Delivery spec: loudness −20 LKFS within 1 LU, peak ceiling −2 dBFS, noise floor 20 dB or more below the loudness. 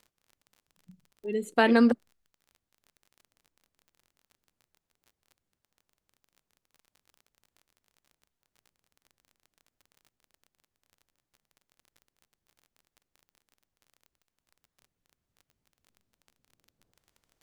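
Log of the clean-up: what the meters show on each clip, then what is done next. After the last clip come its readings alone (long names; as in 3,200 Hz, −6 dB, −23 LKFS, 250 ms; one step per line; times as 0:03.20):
crackle rate 28 per second; integrated loudness −25.0 LKFS; sample peak −7.5 dBFS; target loudness −20.0 LKFS
→ click removal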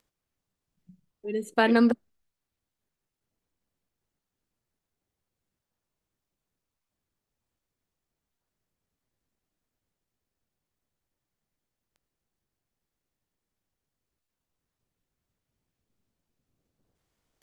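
crackle rate 0.23 per second; integrated loudness −25.0 LKFS; sample peak −7.5 dBFS; target loudness −20.0 LKFS
→ level +5 dB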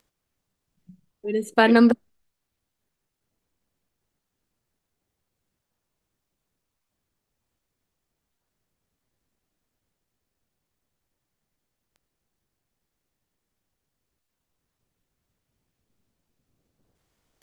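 integrated loudness −20.0 LKFS; sample peak −2.5 dBFS; background noise floor −82 dBFS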